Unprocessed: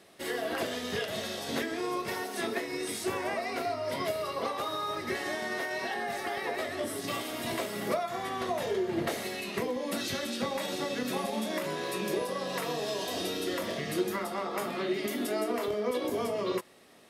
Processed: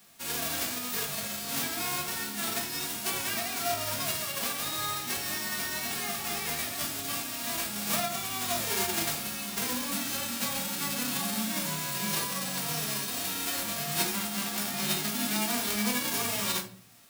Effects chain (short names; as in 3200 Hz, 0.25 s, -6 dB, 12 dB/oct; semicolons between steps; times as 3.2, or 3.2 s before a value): spectral whitening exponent 0.1; shoebox room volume 350 m³, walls furnished, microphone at 1.7 m; gain -1.5 dB